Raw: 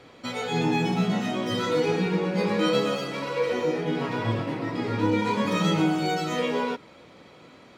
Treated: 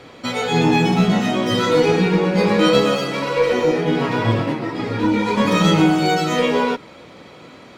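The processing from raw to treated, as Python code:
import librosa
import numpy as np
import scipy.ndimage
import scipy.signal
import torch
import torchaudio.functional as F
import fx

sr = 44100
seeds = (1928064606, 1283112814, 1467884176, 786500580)

y = fx.cheby_harmonics(x, sr, harmonics=(2,), levels_db=(-18,), full_scale_db=-11.0)
y = fx.ensemble(y, sr, at=(4.52, 5.36), fade=0.02)
y = y * librosa.db_to_amplitude(8.5)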